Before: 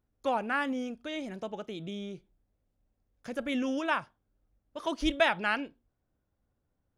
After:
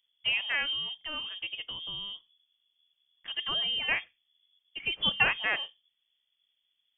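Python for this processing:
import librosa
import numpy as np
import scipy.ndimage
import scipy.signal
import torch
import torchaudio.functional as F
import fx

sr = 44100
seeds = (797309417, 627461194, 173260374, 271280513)

y = fx.freq_invert(x, sr, carrier_hz=3400)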